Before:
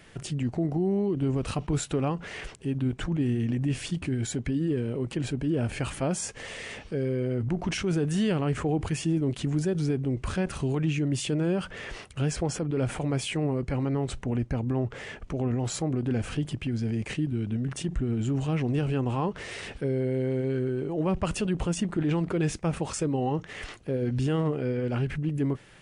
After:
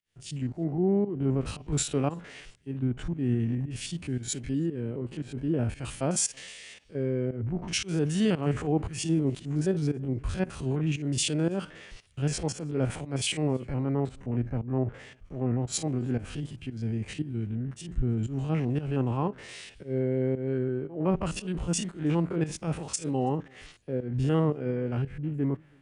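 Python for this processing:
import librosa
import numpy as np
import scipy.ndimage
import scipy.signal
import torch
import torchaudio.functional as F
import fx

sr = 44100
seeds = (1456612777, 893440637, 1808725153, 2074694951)

p1 = fx.spec_steps(x, sr, hold_ms=50)
p2 = fx.volume_shaper(p1, sr, bpm=115, per_beat=1, depth_db=-15, release_ms=155.0, shape='fast start')
p3 = p2 + fx.echo_single(p2, sr, ms=331, db=-23.5, dry=0)
y = fx.band_widen(p3, sr, depth_pct=100)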